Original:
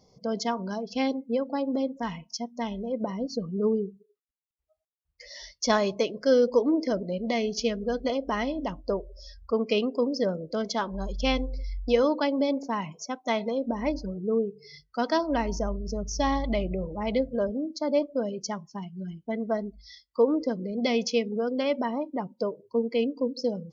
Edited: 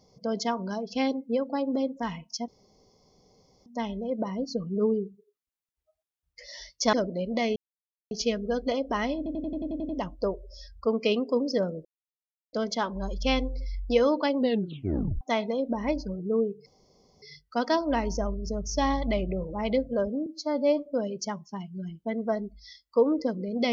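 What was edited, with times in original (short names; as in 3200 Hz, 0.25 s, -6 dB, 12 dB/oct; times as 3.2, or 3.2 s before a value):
2.48 insert room tone 1.18 s
5.75–6.86 cut
7.49 insert silence 0.55 s
8.55 stutter 0.09 s, 9 plays
10.51 insert silence 0.68 s
12.35 tape stop 0.84 s
14.64 insert room tone 0.56 s
17.68–18.08 stretch 1.5×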